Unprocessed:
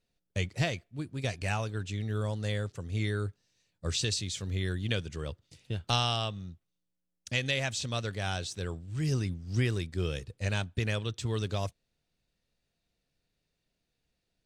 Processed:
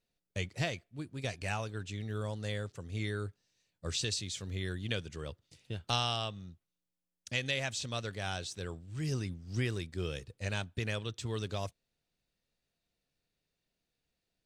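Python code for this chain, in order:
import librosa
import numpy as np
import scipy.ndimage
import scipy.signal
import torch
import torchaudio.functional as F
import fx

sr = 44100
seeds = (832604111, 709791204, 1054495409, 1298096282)

y = fx.low_shelf(x, sr, hz=170.0, db=-4.0)
y = y * librosa.db_to_amplitude(-3.0)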